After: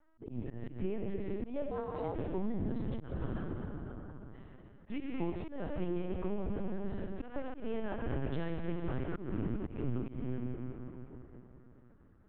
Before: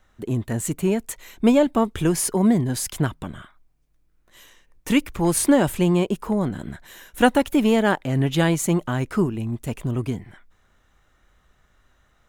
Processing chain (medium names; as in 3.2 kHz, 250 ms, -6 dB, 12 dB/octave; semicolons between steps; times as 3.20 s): single-diode clipper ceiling -9.5 dBFS; 5.19–5.78 s: high-pass 130 Hz 6 dB/octave; algorithmic reverb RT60 3.8 s, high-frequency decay 0.8×, pre-delay 20 ms, DRR 2 dB; compression 16:1, threshold -23 dBFS, peak gain reduction 13.5 dB; dynamic bell 1.2 kHz, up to -4 dB, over -42 dBFS, Q 0.72; level-controlled noise filter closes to 1.2 kHz, open at -12 dBFS; LPC vocoder at 8 kHz pitch kept; slow attack 138 ms; 1.71–2.15 s: ring modulator 470 Hz; trim -6.5 dB